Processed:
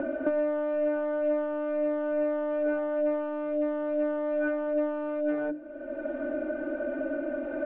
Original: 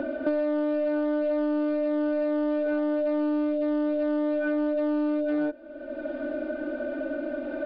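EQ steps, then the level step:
low-pass filter 2,600 Hz 24 dB per octave
high-frequency loss of the air 62 metres
mains-hum notches 50/100/150/200/250/300 Hz
0.0 dB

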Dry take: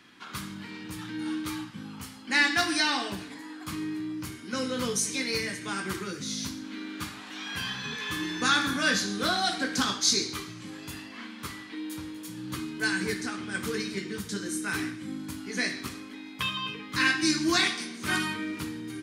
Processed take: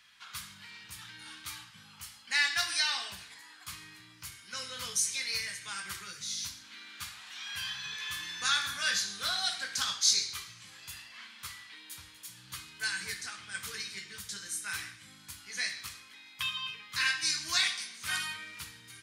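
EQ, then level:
guitar amp tone stack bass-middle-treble 10-0-10
0.0 dB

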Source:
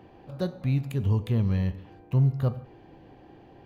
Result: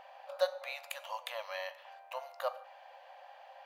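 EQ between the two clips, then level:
linear-phase brick-wall high-pass 520 Hz
+4.0 dB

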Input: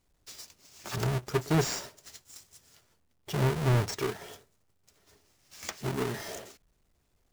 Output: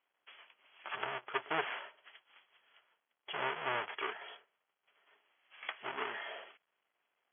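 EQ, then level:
high-pass filter 860 Hz 12 dB per octave
linear-phase brick-wall low-pass 3,400 Hz
+1.0 dB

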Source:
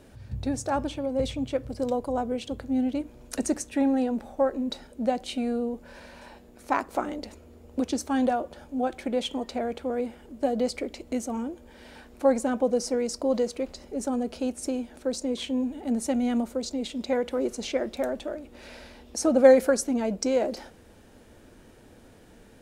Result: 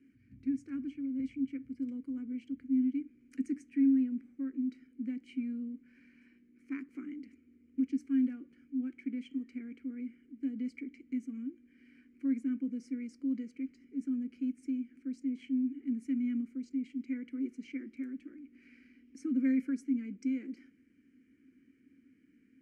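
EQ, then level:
formant filter i
phaser with its sweep stopped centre 1,500 Hz, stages 4
+1.0 dB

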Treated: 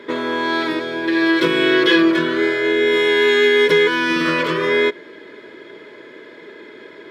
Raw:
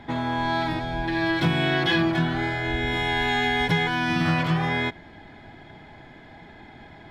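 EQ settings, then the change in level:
high-pass with resonance 420 Hz, resonance Q 3.5
Butterworth band-reject 760 Hz, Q 2
+7.0 dB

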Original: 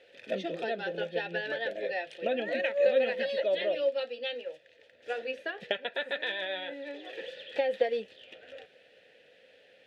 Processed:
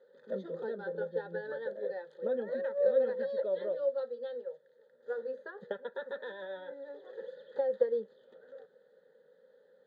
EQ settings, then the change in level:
moving average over 16 samples
low-shelf EQ 120 Hz −11 dB
phaser with its sweep stopped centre 460 Hz, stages 8
+1.0 dB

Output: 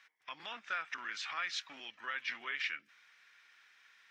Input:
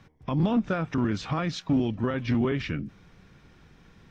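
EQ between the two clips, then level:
high-pass with resonance 1,800 Hz, resonance Q 1.8
−3.5 dB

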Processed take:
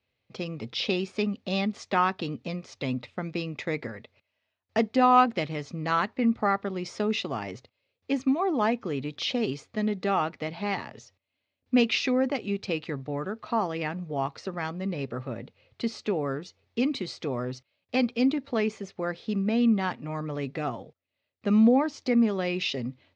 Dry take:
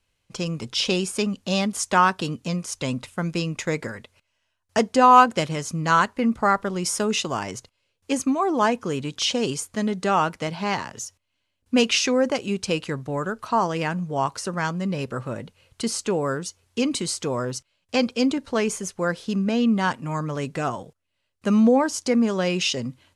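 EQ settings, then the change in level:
dynamic equaliser 540 Hz, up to −6 dB, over −36 dBFS, Q 2.5
loudspeaker in its box 110–3,900 Hz, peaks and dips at 170 Hz −8 dB, 330 Hz −3 dB, 1,000 Hz −9 dB, 1,500 Hz −9 dB, 3,000 Hz −7 dB
0.0 dB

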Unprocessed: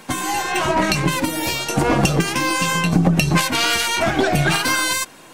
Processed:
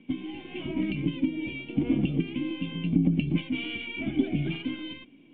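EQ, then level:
formant resonators in series i
0.0 dB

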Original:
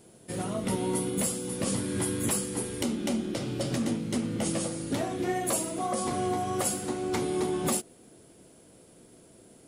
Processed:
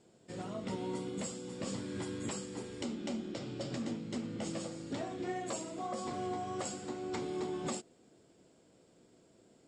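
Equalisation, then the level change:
Chebyshev low-pass filter 7,800 Hz, order 5
low-shelf EQ 92 Hz −7 dB
notch filter 6,100 Hz, Q 10
−8.0 dB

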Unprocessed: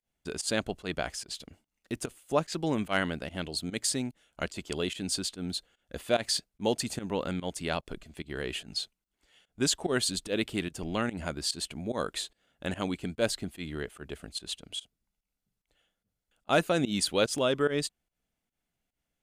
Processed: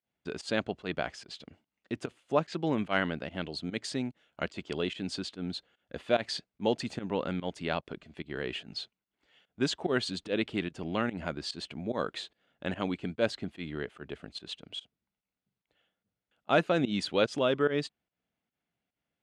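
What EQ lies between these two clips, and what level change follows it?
band-pass filter 100–3,600 Hz
0.0 dB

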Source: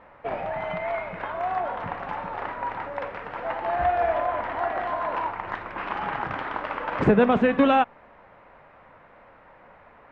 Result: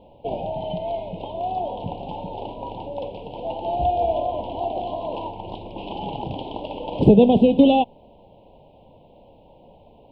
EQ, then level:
elliptic band-stop filter 950–3,000 Hz, stop band 70 dB
phaser with its sweep stopped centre 2,800 Hz, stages 4
+7.5 dB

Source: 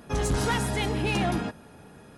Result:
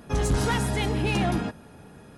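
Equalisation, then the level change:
low-shelf EQ 240 Hz +3.5 dB
0.0 dB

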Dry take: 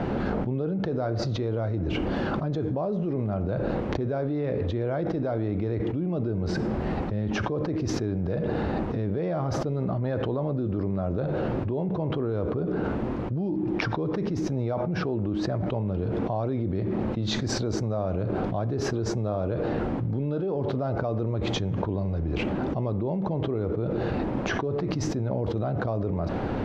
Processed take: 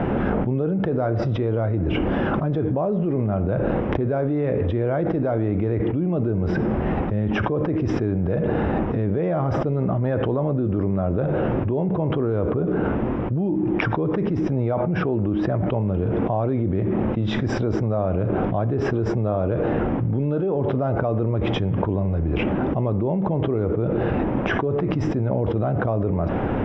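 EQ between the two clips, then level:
Savitzky-Golay smoothing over 25 samples
+5.5 dB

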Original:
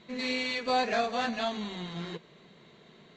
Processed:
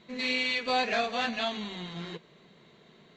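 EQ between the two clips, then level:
dynamic equaliser 2,800 Hz, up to +7 dB, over −47 dBFS, Q 1.1
−1.5 dB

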